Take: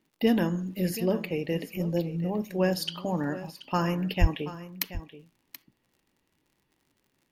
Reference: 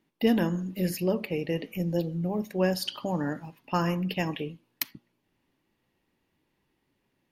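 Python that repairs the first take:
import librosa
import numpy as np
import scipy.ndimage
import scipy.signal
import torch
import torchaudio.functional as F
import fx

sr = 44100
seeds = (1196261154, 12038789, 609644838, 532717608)

y = fx.fix_declick_ar(x, sr, threshold=6.5)
y = fx.fix_deplosive(y, sr, at_s=(4.2,))
y = fx.fix_echo_inverse(y, sr, delay_ms=730, level_db=-14.5)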